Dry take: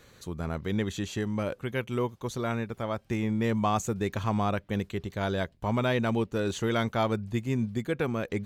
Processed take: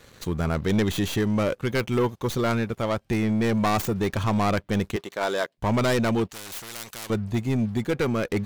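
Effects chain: tracing distortion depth 0.19 ms; 4.96–5.58 HPF 430 Hz 12 dB/oct; sample leveller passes 2; vocal rider within 3 dB 2 s; 6.29–7.1 spectral compressor 4:1

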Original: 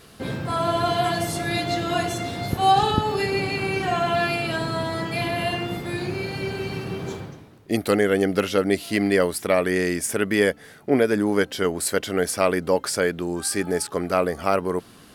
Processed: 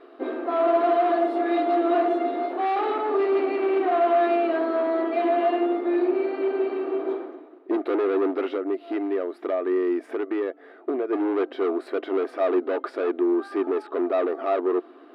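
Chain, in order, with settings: high shelf 2500 Hz -10.5 dB; 8.49–11.13 compressor 10:1, threshold -25 dBFS, peak gain reduction 12 dB; overloaded stage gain 25 dB; brick-wall FIR high-pass 250 Hz; air absorption 430 m; small resonant body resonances 360/670/1200/3800 Hz, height 10 dB; gain +2 dB

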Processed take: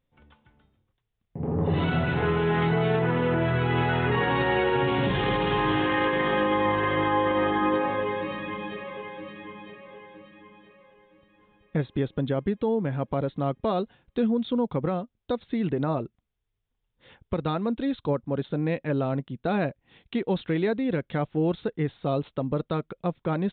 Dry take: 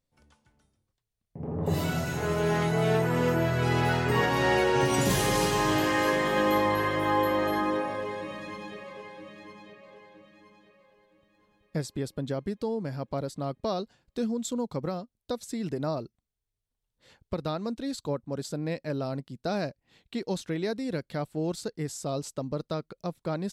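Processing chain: notch 620 Hz, Q 12; limiter -21.5 dBFS, peak gain reduction 8.5 dB; downsampling 8000 Hz; gain +6 dB

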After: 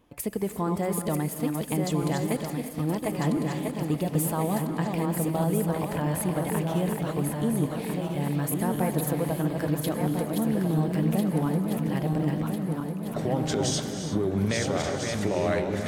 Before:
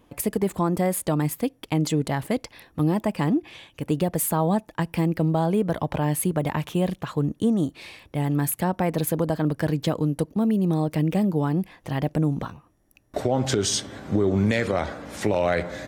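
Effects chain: regenerating reverse delay 0.674 s, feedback 73%, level -4.5 dB; non-linear reverb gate 0.38 s rising, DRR 8.5 dB; gain -5.5 dB

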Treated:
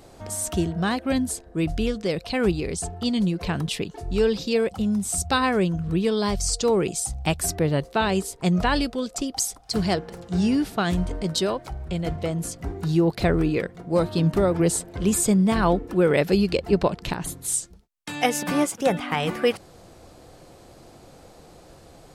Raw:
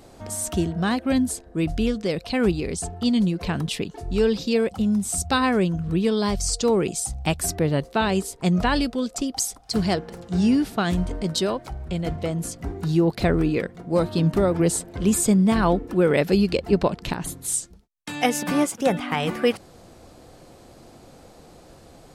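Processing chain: bell 240 Hz -4 dB 0.4 oct

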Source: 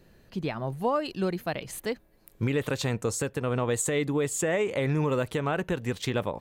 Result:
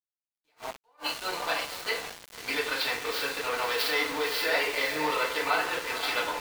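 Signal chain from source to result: tracing distortion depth 0.32 ms; HPF 960 Hz 12 dB/oct; resonant high shelf 5500 Hz -8 dB, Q 3; diffused feedback echo 0.521 s, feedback 47%, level -8 dB; FDN reverb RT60 0.62 s, low-frequency decay 0.75×, high-frequency decay 0.65×, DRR -7 dB; sample gate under -32.5 dBFS; attack slew limiter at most 390 dB/s; gain -1.5 dB

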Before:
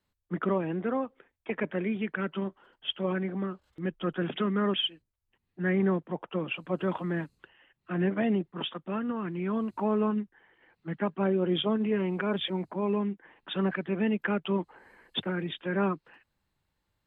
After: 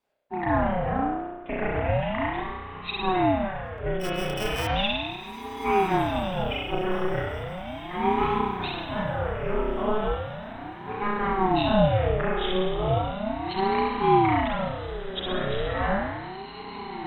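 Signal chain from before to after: 3.97–4.67 sample sorter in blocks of 16 samples; diffused feedback echo 1.369 s, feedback 42%, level -10 dB; spring tank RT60 1.3 s, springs 32 ms, chirp 60 ms, DRR -5.5 dB; ring modulator with a swept carrier 400 Hz, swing 55%, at 0.36 Hz; gain +1 dB

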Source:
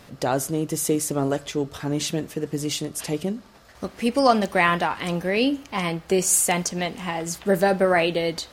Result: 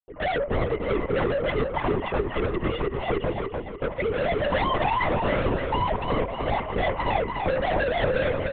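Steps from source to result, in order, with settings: sine-wave speech; gate -51 dBFS, range -58 dB; resonant high-pass 560 Hz, resonance Q 3.7; tilt shelf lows +5.5 dB, about 720 Hz; overdrive pedal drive 29 dB, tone 1500 Hz, clips at -1.5 dBFS; small resonant body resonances 980/2000 Hz, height 15 dB, ringing for 20 ms; tube stage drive 13 dB, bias 0.3; level quantiser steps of 9 dB; air absorption 160 m; feedback echo 0.295 s, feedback 45%, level -4.5 dB; LPC vocoder at 8 kHz whisper; gain -6 dB

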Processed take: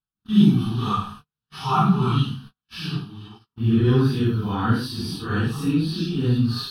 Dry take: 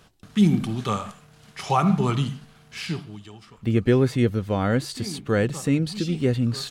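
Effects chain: phase scrambler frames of 0.2 s; gate -43 dBFS, range -41 dB; fixed phaser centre 2100 Hz, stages 6; gain +4 dB

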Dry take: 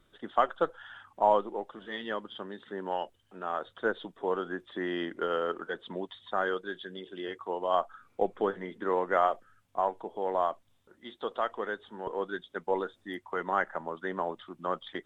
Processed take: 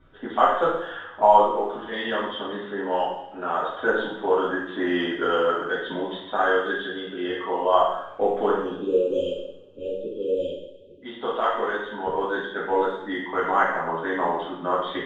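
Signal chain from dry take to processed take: spectral delete 8.57–11.02, 590–2400 Hz; low-pass opened by the level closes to 1900 Hz, open at -25.5 dBFS; in parallel at -2 dB: compressor, threshold -38 dBFS, peak gain reduction 18.5 dB; on the sum: two-slope reverb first 0.73 s, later 2.6 s, from -26 dB, DRR -8.5 dB; gain -1.5 dB

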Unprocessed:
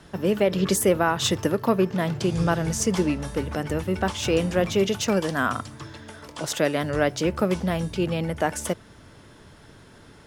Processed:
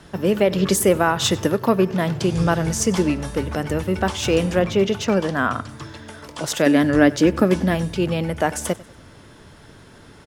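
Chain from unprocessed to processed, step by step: 4.59–5.69 high shelf 5500 Hz -11.5 dB; 6.66–7.75 small resonant body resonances 280/1700 Hz, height 12 dB; feedback echo 96 ms, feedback 44%, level -21 dB; gain +3.5 dB

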